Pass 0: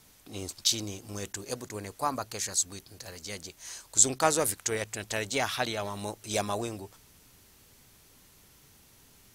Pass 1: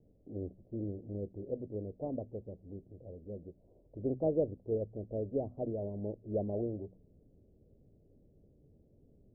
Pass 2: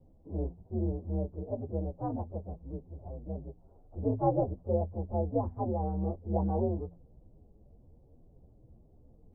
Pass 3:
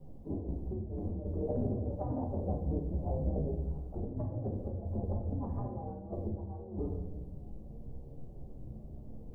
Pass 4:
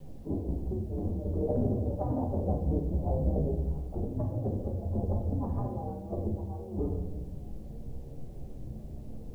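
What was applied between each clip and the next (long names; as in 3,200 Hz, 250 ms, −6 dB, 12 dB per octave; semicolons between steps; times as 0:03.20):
Butterworth low-pass 600 Hz 48 dB per octave; hum removal 62.13 Hz, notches 4
partials spread apart or drawn together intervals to 127%; low-shelf EQ 150 Hz +7 dB; level +5 dB
compressor whose output falls as the input rises −38 dBFS, ratio −0.5; rectangular room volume 290 cubic metres, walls mixed, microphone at 1.2 metres
bit-depth reduction 12 bits, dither none; level +4.5 dB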